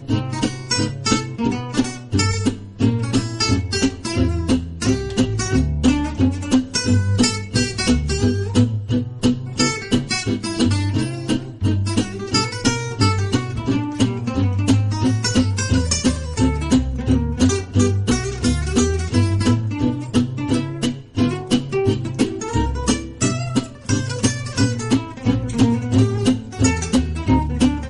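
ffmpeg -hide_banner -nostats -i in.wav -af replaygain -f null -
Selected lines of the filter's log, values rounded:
track_gain = -0.4 dB
track_peak = 0.507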